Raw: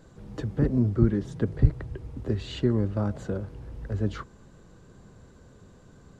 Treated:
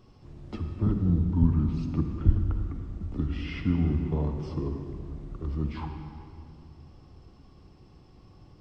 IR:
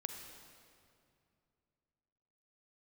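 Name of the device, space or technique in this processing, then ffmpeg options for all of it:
slowed and reverbed: -filter_complex "[0:a]asetrate=31752,aresample=44100[a];[1:a]atrim=start_sample=2205[b];[a][b]afir=irnorm=-1:irlink=0"

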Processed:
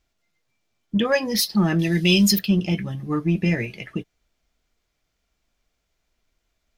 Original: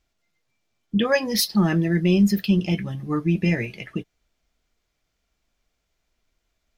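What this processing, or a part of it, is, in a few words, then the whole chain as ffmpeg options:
parallel distortion: -filter_complex "[0:a]asettb=1/sr,asplit=3[a][b][c];[a]atrim=end=1.794[d];[b]atrim=start=1.79:end=2.39,asetpts=PTS-STARTPTS,afade=t=in:d=0.004:c=qsin,afade=t=out:st=0.596:d=0.004:c=qsin,highshelf=f=2.2k:t=q:w=1.5:g=13[e];[c]atrim=start=2.386[f];[d][e]acrossfade=d=0.004:c1=hsin:c2=qsin[g];[g][f]acrossfade=d=0.004:c1=qsin:c2=hsin,asplit=2[h][i];[i]asoftclip=type=hard:threshold=-20.5dB,volume=-14dB[j];[h][j]amix=inputs=2:normalize=0,volume=-1dB"

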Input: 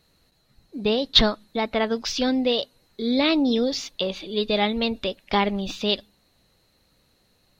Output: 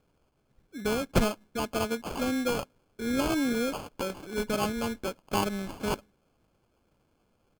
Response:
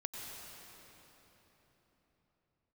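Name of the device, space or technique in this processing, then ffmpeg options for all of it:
crushed at another speed: -af "asetrate=35280,aresample=44100,acrusher=samples=29:mix=1:aa=0.000001,asetrate=55125,aresample=44100,volume=-6.5dB"

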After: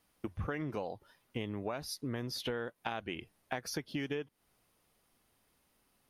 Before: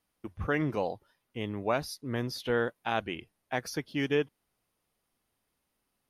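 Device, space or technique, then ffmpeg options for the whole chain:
serial compression, leveller first: -af "acompressor=threshold=-30dB:ratio=2,acompressor=threshold=-42dB:ratio=5,volume=6.5dB"

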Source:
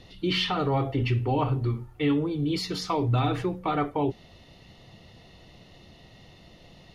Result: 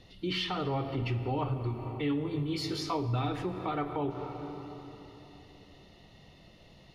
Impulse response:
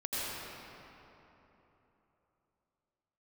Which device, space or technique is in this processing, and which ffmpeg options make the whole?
ducked reverb: -filter_complex "[0:a]asplit=3[a][b][c];[1:a]atrim=start_sample=2205[d];[b][d]afir=irnorm=-1:irlink=0[e];[c]apad=whole_len=306343[f];[e][f]sidechaincompress=threshold=-30dB:ratio=8:attack=16:release=190,volume=-9dB[g];[a][g]amix=inputs=2:normalize=0,asettb=1/sr,asplit=3[h][i][j];[h]atrim=end=2.234[k];[i]atrim=start=2.23:end=2.98,asetpts=PTS-STARTPTS,afade=t=in:d=0.004:c=qsin,afade=t=out:st=0.746:d=0.004:c=qsin,asplit=2[l][m];[m]adelay=19,volume=-5dB[n];[l][n]amix=inputs=2:normalize=0,atrim=end_sample=33075[o];[j]atrim=start=2.976[p];[k][o]acrossfade=d=0.004:c1=hsin:c2=qsin[q];[q][p]acrossfade=d=0.004:c1=qsin:c2=hsin,volume=-7.5dB"

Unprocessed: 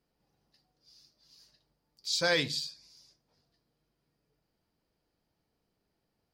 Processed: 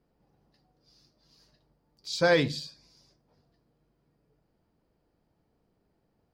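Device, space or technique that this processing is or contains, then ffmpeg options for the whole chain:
through cloth: -af "highshelf=f=2k:g=-14.5,volume=8.5dB"

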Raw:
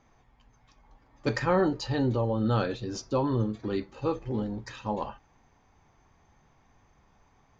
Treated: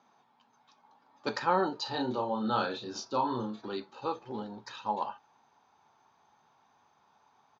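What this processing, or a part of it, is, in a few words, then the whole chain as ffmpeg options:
television speaker: -filter_complex "[0:a]asubboost=boost=11.5:cutoff=55,asplit=3[a][b][c];[a]afade=t=out:st=1.85:d=0.02[d];[b]asplit=2[e][f];[f]adelay=32,volume=-4dB[g];[e][g]amix=inputs=2:normalize=0,afade=t=in:st=1.85:d=0.02,afade=t=out:st=3.61:d=0.02[h];[c]afade=t=in:st=3.61:d=0.02[i];[d][h][i]amix=inputs=3:normalize=0,highpass=f=190:w=0.5412,highpass=f=190:w=1.3066,equalizer=f=310:t=q:w=4:g=-6,equalizer=f=510:t=q:w=4:g=-4,equalizer=f=890:t=q:w=4:g=7,equalizer=f=1.4k:t=q:w=4:g=4,equalizer=f=2k:t=q:w=4:g=-8,equalizer=f=3.9k:t=q:w=4:g=6,lowpass=f=6.5k:w=0.5412,lowpass=f=6.5k:w=1.3066,volume=-2dB"

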